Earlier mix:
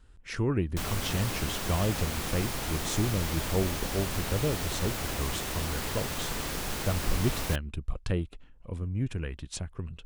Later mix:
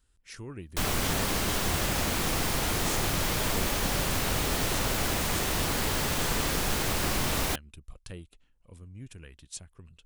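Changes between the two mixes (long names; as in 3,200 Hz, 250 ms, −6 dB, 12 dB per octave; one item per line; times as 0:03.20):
speech: add first-order pre-emphasis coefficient 0.8
background +5.5 dB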